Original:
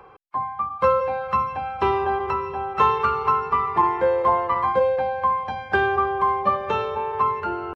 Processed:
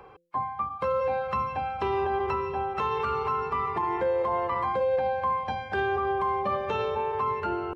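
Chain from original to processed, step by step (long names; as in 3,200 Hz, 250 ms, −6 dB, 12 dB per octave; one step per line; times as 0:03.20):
parametric band 1,200 Hz −4.5 dB 1.1 octaves
hum removal 171.4 Hz, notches 3
brickwall limiter −19.5 dBFS, peak gain reduction 10 dB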